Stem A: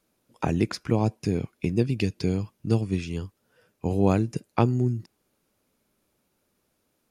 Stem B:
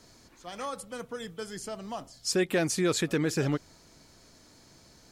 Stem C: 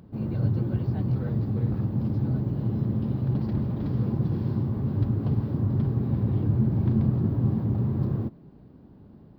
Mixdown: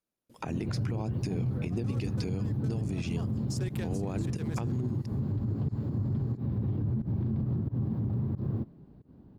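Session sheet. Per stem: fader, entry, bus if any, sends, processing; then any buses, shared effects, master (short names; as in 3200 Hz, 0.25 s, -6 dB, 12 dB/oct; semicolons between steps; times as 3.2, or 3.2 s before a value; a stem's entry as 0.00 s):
+2.5 dB, 0.00 s, bus A, no send, gate with hold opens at -54 dBFS
-6.5 dB, 1.25 s, bus A, no send, Wiener smoothing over 15 samples; high shelf 3500 Hz +11.5 dB; limiter -24 dBFS, peak gain reduction 15 dB
-6.0 dB, 0.35 s, no bus, no send, low shelf 330 Hz +4 dB; pump 90 bpm, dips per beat 1, -23 dB, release 0.133 s
bus A: 0.0 dB, compressor, threshold -26 dBFS, peak gain reduction 13.5 dB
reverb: off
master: limiter -23.5 dBFS, peak gain reduction 12 dB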